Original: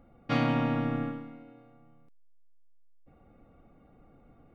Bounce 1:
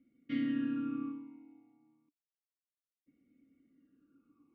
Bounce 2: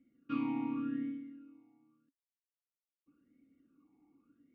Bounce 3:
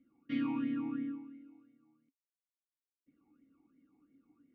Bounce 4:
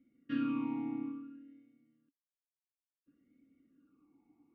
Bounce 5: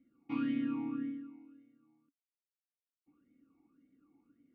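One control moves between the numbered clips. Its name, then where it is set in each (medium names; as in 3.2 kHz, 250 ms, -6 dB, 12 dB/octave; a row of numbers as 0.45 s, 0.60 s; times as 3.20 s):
talking filter, rate: 0.3 Hz, 0.87 Hz, 2.9 Hz, 0.58 Hz, 1.8 Hz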